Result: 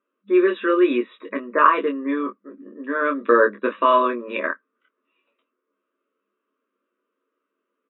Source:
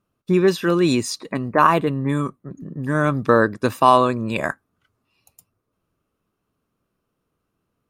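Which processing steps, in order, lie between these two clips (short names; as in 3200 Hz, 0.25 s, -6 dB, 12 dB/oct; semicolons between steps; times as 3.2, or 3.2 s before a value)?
FFT band-pass 200–3900 Hz; Butterworth band-stop 780 Hz, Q 1.9; three-band isolator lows -16 dB, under 290 Hz, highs -16 dB, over 2800 Hz; on a send: early reflections 11 ms -5 dB, 25 ms -5 dB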